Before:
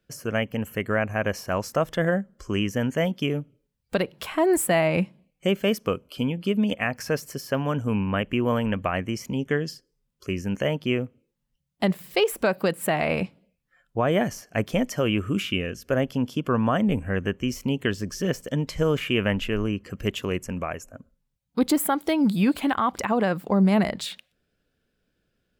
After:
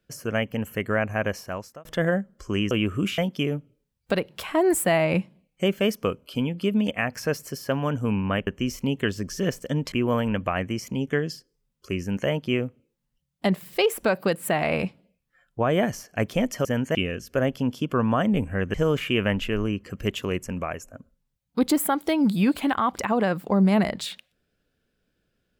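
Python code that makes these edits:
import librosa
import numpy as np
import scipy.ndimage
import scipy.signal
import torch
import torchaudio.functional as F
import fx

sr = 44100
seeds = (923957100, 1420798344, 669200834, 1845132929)

y = fx.edit(x, sr, fx.fade_out_span(start_s=1.22, length_s=0.63),
    fx.swap(start_s=2.71, length_s=0.3, other_s=15.03, other_length_s=0.47),
    fx.move(start_s=17.29, length_s=1.45, to_s=8.3), tone=tone)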